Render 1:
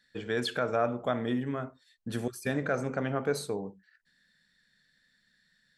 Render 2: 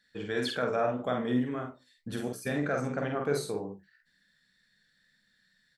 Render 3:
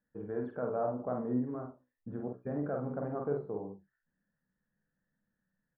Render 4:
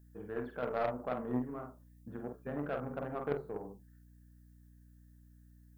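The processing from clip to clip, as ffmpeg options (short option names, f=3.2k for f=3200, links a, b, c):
-af "flanger=delay=9.9:depth=6.3:regen=68:speed=1.9:shape=sinusoidal,aecho=1:1:48|68:0.631|0.178,volume=2.5dB"
-af "lowpass=f=1.1k:w=0.5412,lowpass=f=1.1k:w=1.3066,volume=-4dB"
-af "aeval=exprs='0.1*(cos(1*acos(clip(val(0)/0.1,-1,1)))-cos(1*PI/2))+0.0158*(cos(3*acos(clip(val(0)/0.1,-1,1)))-cos(3*PI/2))+0.00126*(cos(8*acos(clip(val(0)/0.1,-1,1)))-cos(8*PI/2))':c=same,crystalizer=i=10:c=0,aeval=exprs='val(0)+0.00126*(sin(2*PI*60*n/s)+sin(2*PI*2*60*n/s)/2+sin(2*PI*3*60*n/s)/3+sin(2*PI*4*60*n/s)/4+sin(2*PI*5*60*n/s)/5)':c=same"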